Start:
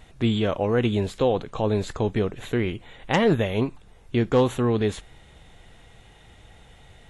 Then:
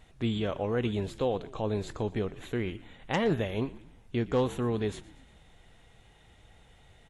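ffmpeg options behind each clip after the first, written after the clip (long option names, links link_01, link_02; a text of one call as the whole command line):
ffmpeg -i in.wav -filter_complex "[0:a]asplit=5[link_01][link_02][link_03][link_04][link_05];[link_02]adelay=118,afreqshift=-53,volume=-18.5dB[link_06];[link_03]adelay=236,afreqshift=-106,volume=-24.5dB[link_07];[link_04]adelay=354,afreqshift=-159,volume=-30.5dB[link_08];[link_05]adelay=472,afreqshift=-212,volume=-36.6dB[link_09];[link_01][link_06][link_07][link_08][link_09]amix=inputs=5:normalize=0,volume=-7.5dB" out.wav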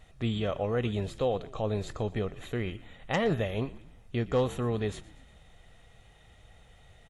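ffmpeg -i in.wav -af "aecho=1:1:1.6:0.32" out.wav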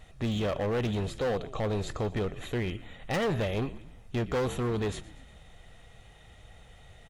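ffmpeg -i in.wav -af "volume=29dB,asoftclip=hard,volume=-29dB,volume=3.5dB" out.wav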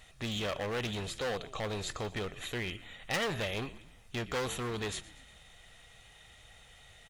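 ffmpeg -i in.wav -af "tiltshelf=frequency=1100:gain=-6.5,volume=-2dB" out.wav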